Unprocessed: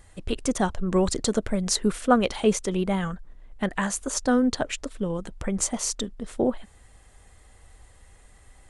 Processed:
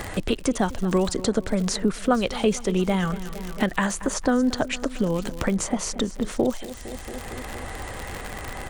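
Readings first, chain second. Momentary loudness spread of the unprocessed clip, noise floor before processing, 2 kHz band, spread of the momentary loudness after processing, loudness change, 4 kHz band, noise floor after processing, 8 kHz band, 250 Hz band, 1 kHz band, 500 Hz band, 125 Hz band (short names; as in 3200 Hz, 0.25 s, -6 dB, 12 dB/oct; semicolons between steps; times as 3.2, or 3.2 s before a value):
10 LU, -54 dBFS, +3.0 dB, 12 LU, +0.5 dB, +1.0 dB, -37 dBFS, -2.0 dB, +2.0 dB, +0.5 dB, +1.5 dB, +3.0 dB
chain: high shelf 6900 Hz -7.5 dB; in parallel at +2 dB: compressor, threshold -34 dBFS, peak gain reduction 19 dB; on the sum: feedback echo 0.228 s, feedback 55%, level -18.5 dB; crackle 94/s -34 dBFS; three-band squash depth 70%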